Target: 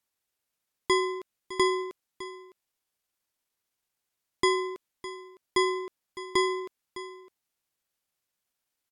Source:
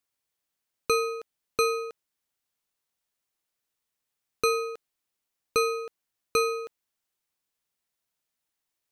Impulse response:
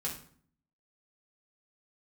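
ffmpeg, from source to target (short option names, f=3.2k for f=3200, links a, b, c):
-af "asetrate=36028,aresample=44100,atempo=1.22405,aecho=1:1:608:0.178"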